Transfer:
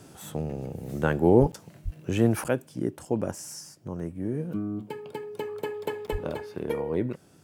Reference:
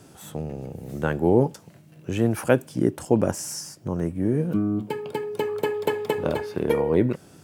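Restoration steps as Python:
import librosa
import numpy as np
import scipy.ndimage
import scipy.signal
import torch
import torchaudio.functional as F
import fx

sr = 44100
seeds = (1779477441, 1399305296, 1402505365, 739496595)

y = fx.highpass(x, sr, hz=140.0, slope=24, at=(1.4, 1.52), fade=0.02)
y = fx.highpass(y, sr, hz=140.0, slope=24, at=(1.84, 1.96), fade=0.02)
y = fx.highpass(y, sr, hz=140.0, slope=24, at=(6.11, 6.23), fade=0.02)
y = fx.fix_interpolate(y, sr, at_s=(1.52, 2.44, 6.07), length_ms=8.5)
y = fx.gain(y, sr, db=fx.steps((0.0, 0.0), (2.48, 7.5)))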